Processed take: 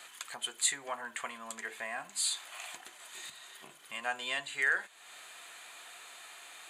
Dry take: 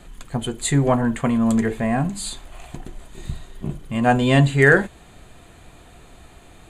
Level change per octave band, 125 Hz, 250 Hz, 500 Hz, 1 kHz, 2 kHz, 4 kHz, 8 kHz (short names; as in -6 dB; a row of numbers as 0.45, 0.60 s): under -40 dB, -36.5 dB, -25.0 dB, -16.0 dB, -11.5 dB, -4.5 dB, -3.0 dB